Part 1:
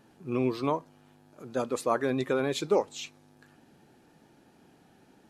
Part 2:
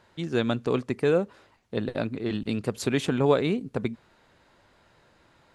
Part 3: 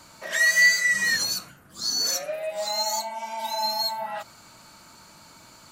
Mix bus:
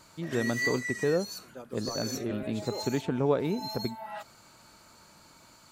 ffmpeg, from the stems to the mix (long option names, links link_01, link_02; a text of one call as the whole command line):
ffmpeg -i stem1.wav -i stem2.wav -i stem3.wav -filter_complex "[0:a]volume=-14.5dB[link_01];[1:a]highshelf=frequency=2400:gain=-12,volume=-4dB,asplit=2[link_02][link_03];[2:a]volume=-6.5dB[link_04];[link_03]apad=whole_len=252031[link_05];[link_04][link_05]sidechaincompress=threshold=-38dB:ratio=4:attack=29:release=315[link_06];[link_01][link_02][link_06]amix=inputs=3:normalize=0" out.wav